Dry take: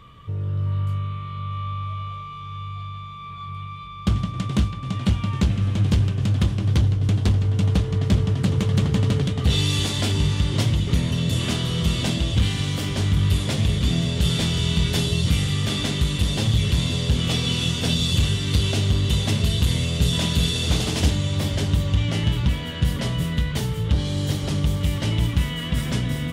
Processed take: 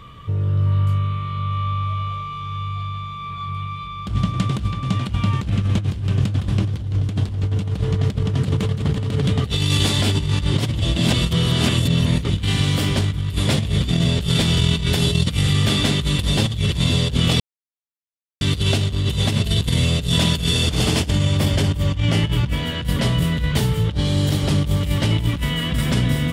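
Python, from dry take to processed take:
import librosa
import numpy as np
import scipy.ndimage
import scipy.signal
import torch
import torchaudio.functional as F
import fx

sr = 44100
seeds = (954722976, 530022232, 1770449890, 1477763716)

y = fx.notch(x, sr, hz=3900.0, q=14.0, at=(20.31, 22.59))
y = fx.edit(y, sr, fx.reverse_span(start_s=10.79, length_s=1.59),
    fx.silence(start_s=17.4, length_s=1.01), tone=tone)
y = fx.dynamic_eq(y, sr, hz=6200.0, q=3.4, threshold_db=-49.0, ratio=4.0, max_db=-4)
y = fx.over_compress(y, sr, threshold_db=-22.0, ratio=-0.5)
y = y * 10.0 ** (4.0 / 20.0)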